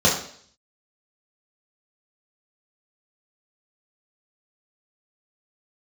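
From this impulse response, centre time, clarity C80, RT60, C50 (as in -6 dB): 34 ms, 10.0 dB, 0.55 s, 6.0 dB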